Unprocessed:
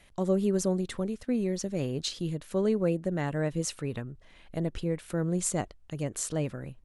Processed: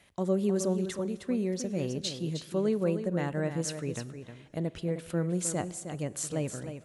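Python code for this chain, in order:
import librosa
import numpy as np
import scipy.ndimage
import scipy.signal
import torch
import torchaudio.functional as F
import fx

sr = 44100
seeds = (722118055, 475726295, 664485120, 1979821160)

p1 = scipy.signal.sosfilt(scipy.signal.butter(2, 80.0, 'highpass', fs=sr, output='sos'), x)
p2 = p1 + fx.echo_single(p1, sr, ms=311, db=-9.0, dry=0)
p3 = fx.rev_plate(p2, sr, seeds[0], rt60_s=2.8, hf_ratio=0.65, predelay_ms=0, drr_db=18.5)
y = p3 * librosa.db_to_amplitude(-1.5)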